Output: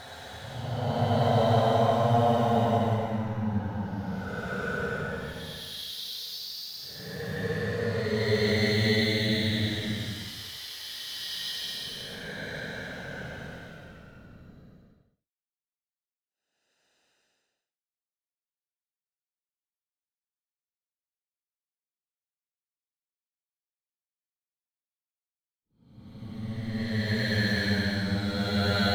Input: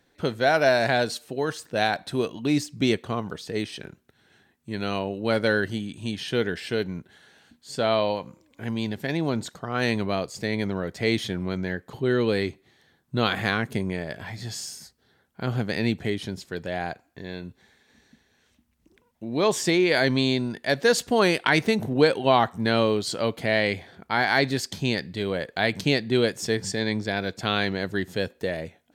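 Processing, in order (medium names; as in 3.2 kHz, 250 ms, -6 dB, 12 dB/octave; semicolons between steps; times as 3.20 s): static phaser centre 1.7 kHz, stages 8; crossover distortion -46 dBFS; Paulstretch 16×, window 0.10 s, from 3.03 s; trim +9 dB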